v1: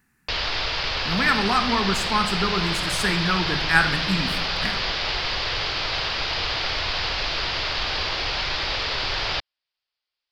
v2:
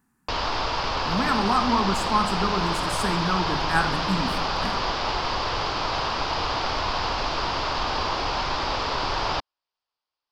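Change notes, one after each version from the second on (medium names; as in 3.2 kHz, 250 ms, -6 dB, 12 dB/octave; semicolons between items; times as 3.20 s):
speech -5.5 dB; master: add graphic EQ 250/1000/2000/4000/8000 Hz +7/+9/-7/-6/+4 dB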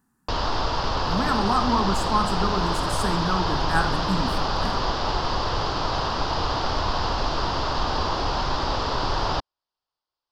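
background: add bass shelf 330 Hz +6 dB; master: add peaking EQ 2.3 kHz -8 dB 0.5 oct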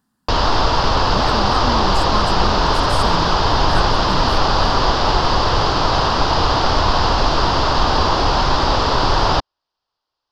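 background +9.0 dB; reverb: off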